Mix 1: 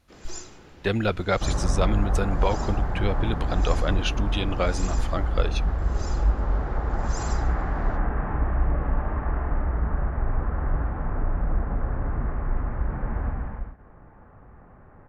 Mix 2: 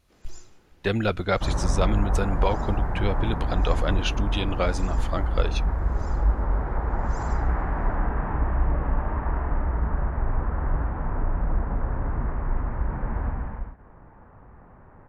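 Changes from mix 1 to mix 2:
first sound -11.5 dB; second sound: remove notch 950 Hz, Q 11

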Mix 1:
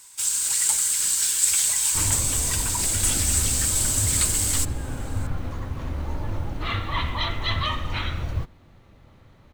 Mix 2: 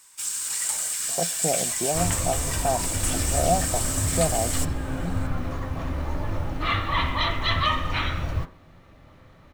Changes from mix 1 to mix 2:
speech: unmuted; first sound -7.5 dB; reverb: on, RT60 0.50 s

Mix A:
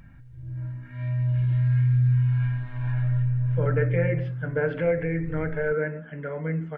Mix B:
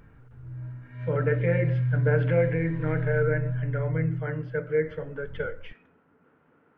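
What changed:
speech: entry -2.50 s; background -4.5 dB

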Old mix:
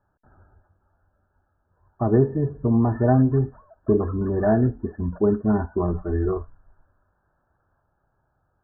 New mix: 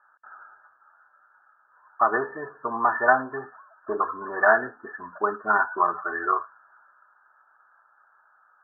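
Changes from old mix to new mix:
speech +10.5 dB; master: add resonant high-pass 1300 Hz, resonance Q 2.9

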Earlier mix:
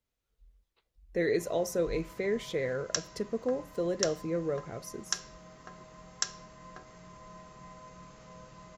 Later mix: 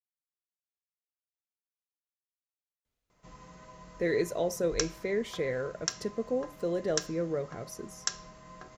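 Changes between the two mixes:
speech: entry +2.85 s; background: entry +1.85 s

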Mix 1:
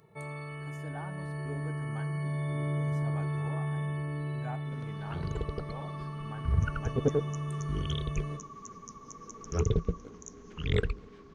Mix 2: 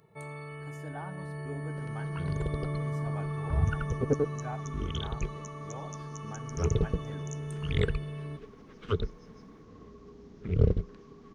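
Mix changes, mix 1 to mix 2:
speech: send on; first sound: send -6.0 dB; second sound: entry -2.95 s

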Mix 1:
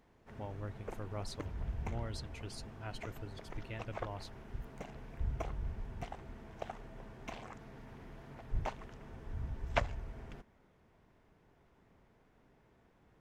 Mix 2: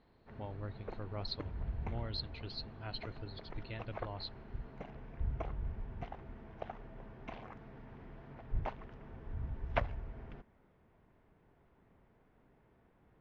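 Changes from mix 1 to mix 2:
speech: add synth low-pass 4200 Hz, resonance Q 12; master: add air absorption 270 m

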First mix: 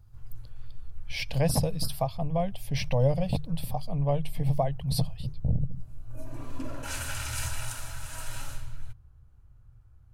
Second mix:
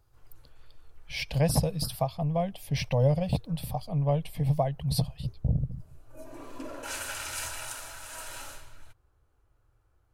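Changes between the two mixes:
background: add resonant low shelf 240 Hz -13.5 dB, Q 1.5; master: remove notches 50/100/150 Hz

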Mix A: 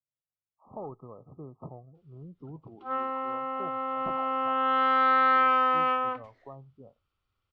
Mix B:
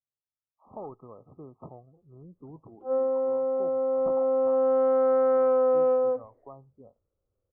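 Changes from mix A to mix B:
speech: add bell 140 Hz -5 dB 0.73 oct; background: add synth low-pass 520 Hz, resonance Q 4.7

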